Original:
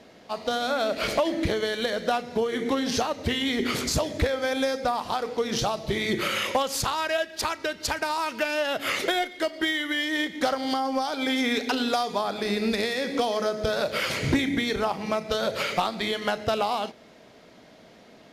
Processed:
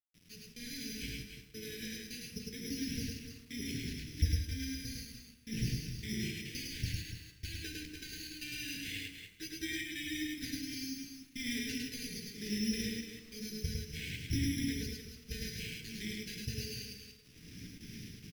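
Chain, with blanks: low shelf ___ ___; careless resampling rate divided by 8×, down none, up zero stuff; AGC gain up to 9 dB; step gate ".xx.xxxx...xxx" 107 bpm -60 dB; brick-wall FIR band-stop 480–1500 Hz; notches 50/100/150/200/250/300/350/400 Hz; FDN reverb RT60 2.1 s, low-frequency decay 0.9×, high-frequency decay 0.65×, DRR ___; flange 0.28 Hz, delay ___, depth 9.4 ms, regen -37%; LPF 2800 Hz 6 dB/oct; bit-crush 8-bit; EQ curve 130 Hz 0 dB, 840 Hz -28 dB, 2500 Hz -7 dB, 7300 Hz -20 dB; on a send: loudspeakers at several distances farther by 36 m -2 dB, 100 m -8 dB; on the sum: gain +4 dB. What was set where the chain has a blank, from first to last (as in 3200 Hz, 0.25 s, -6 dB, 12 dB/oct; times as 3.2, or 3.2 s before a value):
410 Hz, +5.5 dB, 7.5 dB, 9.6 ms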